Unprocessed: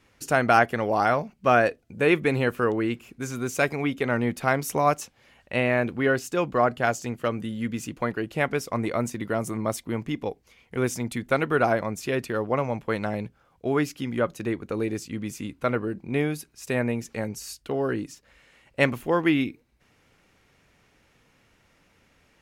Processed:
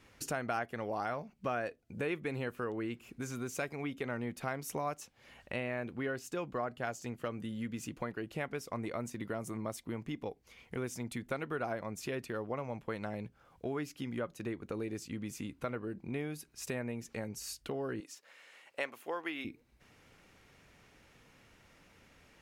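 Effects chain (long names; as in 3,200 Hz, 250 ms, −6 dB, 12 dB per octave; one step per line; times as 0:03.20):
0:18.00–0:19.45: high-pass filter 510 Hz 12 dB per octave
downward compressor 2.5 to 1, threshold −41 dBFS, peak gain reduction 18 dB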